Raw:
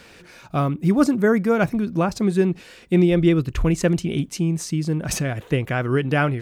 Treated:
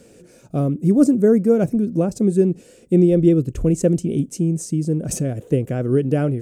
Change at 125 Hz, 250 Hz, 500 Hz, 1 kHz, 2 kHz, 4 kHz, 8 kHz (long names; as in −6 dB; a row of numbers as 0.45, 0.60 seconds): +1.5 dB, +3.0 dB, +3.0 dB, −8.5 dB, below −10 dB, can't be measured, +0.5 dB